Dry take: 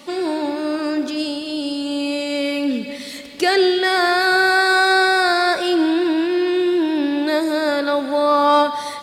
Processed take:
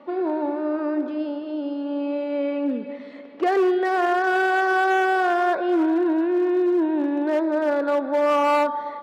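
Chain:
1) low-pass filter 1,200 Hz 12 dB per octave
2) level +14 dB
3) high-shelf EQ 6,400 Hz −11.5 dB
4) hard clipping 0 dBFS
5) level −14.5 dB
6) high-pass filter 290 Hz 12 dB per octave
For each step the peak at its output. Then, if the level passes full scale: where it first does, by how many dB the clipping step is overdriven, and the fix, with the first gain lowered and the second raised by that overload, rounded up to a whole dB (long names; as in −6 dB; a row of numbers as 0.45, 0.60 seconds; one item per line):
−6.5, +7.5, +7.5, 0.0, −14.5, −10.0 dBFS
step 2, 7.5 dB
step 2 +6 dB, step 5 −6.5 dB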